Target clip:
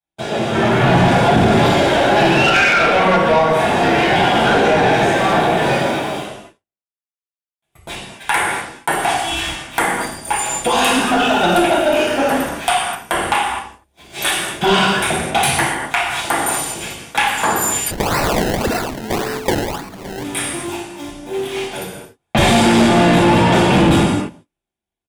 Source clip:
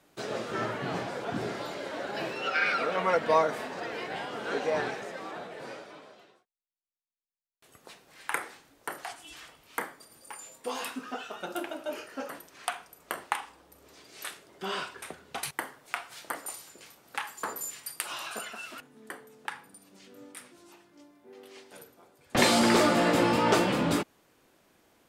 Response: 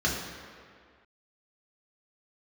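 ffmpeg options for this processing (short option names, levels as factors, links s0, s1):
-filter_complex "[0:a]acrusher=bits=9:mix=0:aa=0.000001,dynaudnorm=f=130:g=13:m=5.01,bandreject=f=1300:w=16,acompressor=threshold=0.0891:ratio=8,aecho=1:1:243:0.0668,agate=range=0.0112:threshold=0.00891:ratio=16:detection=peak,highshelf=f=6300:g=10.5[s0];[1:a]atrim=start_sample=2205,atrim=end_sample=6174,asetrate=22932,aresample=44100[s1];[s0][s1]afir=irnorm=-1:irlink=0,asoftclip=type=tanh:threshold=0.531,lowshelf=f=140:g=5,asplit=3[s2][s3][s4];[s2]afade=t=out:st=17.9:d=0.02[s5];[s3]acrusher=samples=26:mix=1:aa=0.000001:lfo=1:lforange=26:lforate=1.8,afade=t=in:st=17.9:d=0.02,afade=t=out:st=20.23:d=0.02[s6];[s4]afade=t=in:st=20.23:d=0.02[s7];[s5][s6][s7]amix=inputs=3:normalize=0,volume=0.794"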